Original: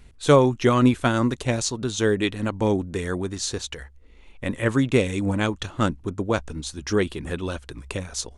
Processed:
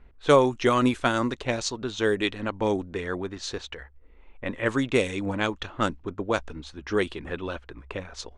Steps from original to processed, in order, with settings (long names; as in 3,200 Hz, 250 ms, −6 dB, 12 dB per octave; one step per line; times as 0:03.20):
parametric band 120 Hz −9 dB 2.4 octaves
low-pass that shuts in the quiet parts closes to 1,500 Hz, open at −17.5 dBFS